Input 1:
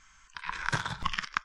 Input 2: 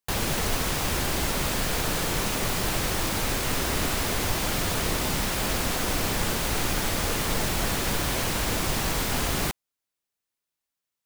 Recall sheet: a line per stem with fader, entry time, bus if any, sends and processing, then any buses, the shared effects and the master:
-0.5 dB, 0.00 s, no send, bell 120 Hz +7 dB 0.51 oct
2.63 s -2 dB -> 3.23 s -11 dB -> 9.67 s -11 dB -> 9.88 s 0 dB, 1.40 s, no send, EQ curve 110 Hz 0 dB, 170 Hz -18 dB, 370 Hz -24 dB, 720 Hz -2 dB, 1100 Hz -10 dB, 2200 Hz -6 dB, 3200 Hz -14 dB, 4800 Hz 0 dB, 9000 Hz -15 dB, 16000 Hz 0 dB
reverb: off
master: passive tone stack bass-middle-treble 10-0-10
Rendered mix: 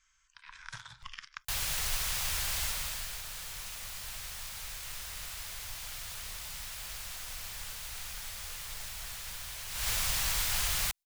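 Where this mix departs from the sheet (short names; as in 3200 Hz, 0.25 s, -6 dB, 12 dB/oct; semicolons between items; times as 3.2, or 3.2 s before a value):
stem 1 -0.5 dB -> -8.5 dB; stem 2: missing EQ curve 110 Hz 0 dB, 170 Hz -18 dB, 370 Hz -24 dB, 720 Hz -2 dB, 1100 Hz -10 dB, 2200 Hz -6 dB, 3200 Hz -14 dB, 4800 Hz 0 dB, 9000 Hz -15 dB, 16000 Hz 0 dB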